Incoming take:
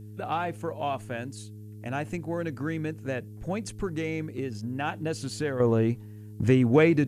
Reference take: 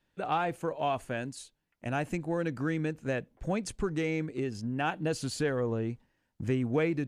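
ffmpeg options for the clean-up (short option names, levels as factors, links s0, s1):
-af "bandreject=f=105.8:t=h:w=4,bandreject=f=211.6:t=h:w=4,bandreject=f=317.4:t=h:w=4,bandreject=f=423.2:t=h:w=4,agate=range=0.0891:threshold=0.0178,asetnsamples=n=441:p=0,asendcmd='5.6 volume volume -8.5dB',volume=1"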